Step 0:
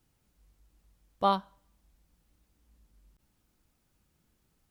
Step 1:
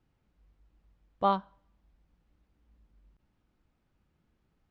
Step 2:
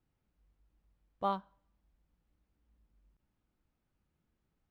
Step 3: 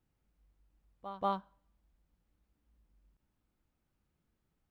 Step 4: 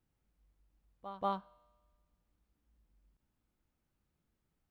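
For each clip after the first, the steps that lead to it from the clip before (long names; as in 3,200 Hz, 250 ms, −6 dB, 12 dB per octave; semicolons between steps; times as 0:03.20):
Bessel low-pass filter 2,400 Hz, order 2
floating-point word with a short mantissa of 6 bits; level −7 dB
backwards echo 185 ms −12 dB
tuned comb filter 120 Hz, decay 1.5 s, mix 40%; level +2.5 dB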